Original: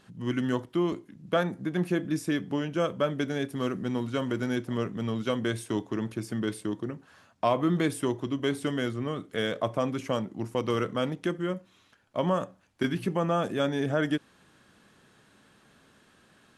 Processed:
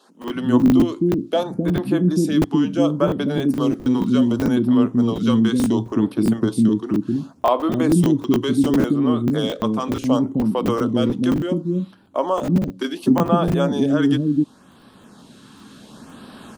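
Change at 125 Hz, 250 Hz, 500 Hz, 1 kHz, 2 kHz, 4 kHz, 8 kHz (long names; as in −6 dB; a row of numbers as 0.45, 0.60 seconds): +10.0, +13.5, +7.0, +7.5, +1.5, +6.0, +7.5 decibels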